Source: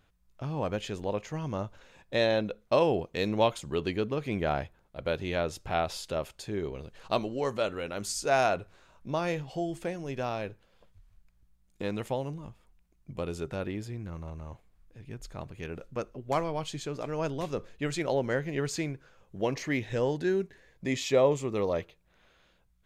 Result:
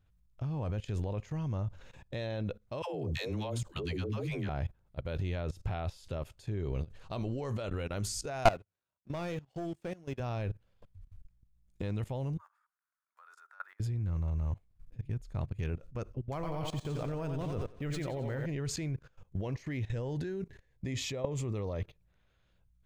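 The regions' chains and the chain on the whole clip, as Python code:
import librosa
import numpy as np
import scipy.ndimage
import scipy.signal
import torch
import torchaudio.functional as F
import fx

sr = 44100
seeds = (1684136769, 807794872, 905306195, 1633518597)

y = fx.chain(x, sr, fx.bass_treble(bass_db=-4, treble_db=5),
    fx.dispersion(late='lows', ms=131.0, hz=400.0), at=(2.82, 4.49))
y = fx.chain(y, sr, fx.highpass(hz=170.0, slope=12),
    fx.leveller(passes=3),
    fx.upward_expand(threshold_db=-35.0, expansion=2.5), at=(8.45, 10.2))
y = fx.chain(y, sr, fx.block_float(bits=7),
    fx.highpass(hz=1200.0, slope=24),
    fx.high_shelf_res(hz=2000.0, db=-11.5, q=3.0), at=(12.38, 13.8))
y = fx.chain(y, sr, fx.echo_thinned(ms=89, feedback_pct=57, hz=180.0, wet_db=-7.0),
    fx.resample_linear(factor=3), at=(16.34, 18.46))
y = fx.peak_eq(y, sr, hz=100.0, db=9.0, octaves=1.1)
y = fx.level_steps(y, sr, step_db=19)
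y = fx.low_shelf(y, sr, hz=130.0, db=10.0)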